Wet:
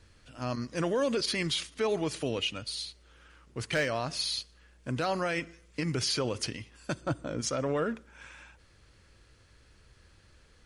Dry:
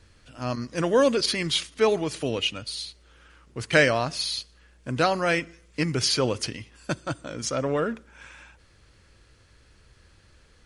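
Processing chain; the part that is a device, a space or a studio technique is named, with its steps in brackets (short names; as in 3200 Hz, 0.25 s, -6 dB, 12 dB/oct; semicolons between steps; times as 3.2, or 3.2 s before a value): 7.01–7.41 tilt shelf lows +5 dB, about 1300 Hz; clipper into limiter (hard clip -10.5 dBFS, distortion -24 dB; limiter -17.5 dBFS, peak gain reduction 7 dB); gain -3 dB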